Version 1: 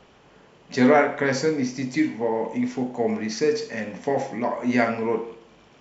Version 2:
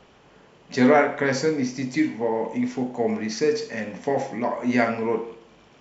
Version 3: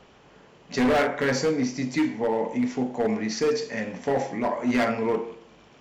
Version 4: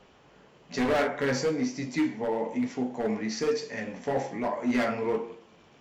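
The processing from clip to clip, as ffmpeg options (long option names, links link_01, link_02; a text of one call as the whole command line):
ffmpeg -i in.wav -af anull out.wav
ffmpeg -i in.wav -af "asoftclip=type=hard:threshold=-18dB" out.wav
ffmpeg -i in.wav -af "flanger=delay=9.5:depth=6.6:regen=-36:speed=1.1:shape=triangular" out.wav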